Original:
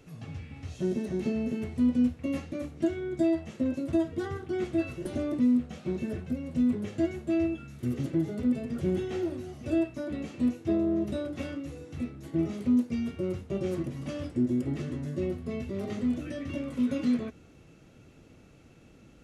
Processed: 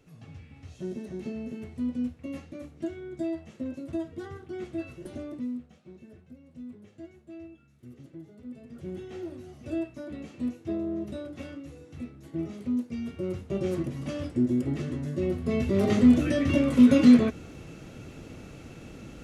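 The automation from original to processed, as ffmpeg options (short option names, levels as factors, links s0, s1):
-af "volume=12.6,afade=t=out:st=5.1:d=0.72:silence=0.281838,afade=t=in:st=8.43:d=1.11:silence=0.237137,afade=t=in:st=12.89:d=0.73:silence=0.473151,afade=t=in:st=15.22:d=0.66:silence=0.354813"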